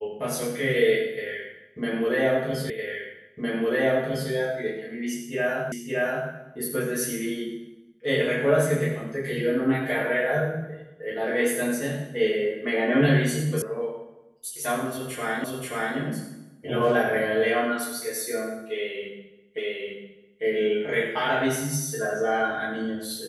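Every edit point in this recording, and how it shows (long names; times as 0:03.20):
0:02.70: the same again, the last 1.61 s
0:05.72: the same again, the last 0.57 s
0:13.62: cut off before it has died away
0:15.44: the same again, the last 0.53 s
0:19.58: the same again, the last 0.85 s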